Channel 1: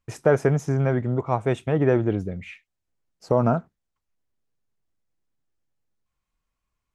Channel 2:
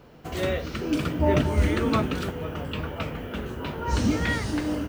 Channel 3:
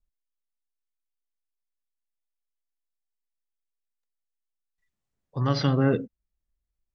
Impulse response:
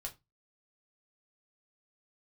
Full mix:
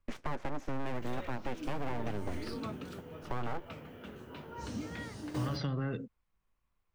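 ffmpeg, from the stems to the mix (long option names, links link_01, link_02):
-filter_complex "[0:a]lowpass=2600,alimiter=limit=-17dB:level=0:latency=1:release=146,aeval=exprs='abs(val(0))':channel_layout=same,volume=0.5dB[link_01];[1:a]highpass=100,adynamicequalizer=threshold=0.01:dfrequency=2200:dqfactor=0.71:tfrequency=2200:tqfactor=0.71:attack=5:release=100:ratio=0.375:range=2:mode=cutabove:tftype=bell,adelay=700,volume=-2dB[link_02];[2:a]acompressor=threshold=-22dB:ratio=6,volume=-2.5dB,asplit=2[link_03][link_04];[link_04]apad=whole_len=246170[link_05];[link_02][link_05]sidechaingate=range=-12dB:threshold=-60dB:ratio=16:detection=peak[link_06];[link_01][link_06][link_03]amix=inputs=3:normalize=0,acrossover=split=190|990[link_07][link_08][link_09];[link_07]acompressor=threshold=-33dB:ratio=4[link_10];[link_08]acompressor=threshold=-38dB:ratio=4[link_11];[link_09]acompressor=threshold=-42dB:ratio=4[link_12];[link_10][link_11][link_12]amix=inputs=3:normalize=0,asoftclip=type=tanh:threshold=-24dB"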